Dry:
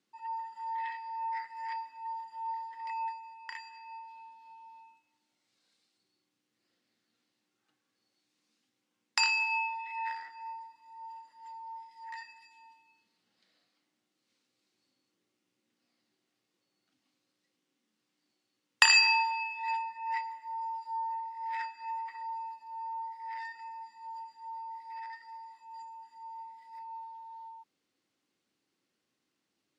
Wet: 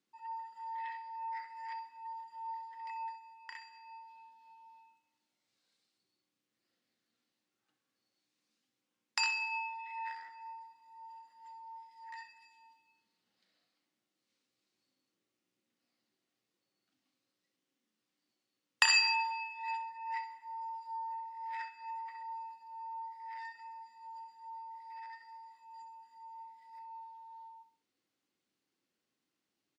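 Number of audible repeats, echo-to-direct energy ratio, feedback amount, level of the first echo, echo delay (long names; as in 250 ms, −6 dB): 3, −11.5 dB, 30%, −12.0 dB, 65 ms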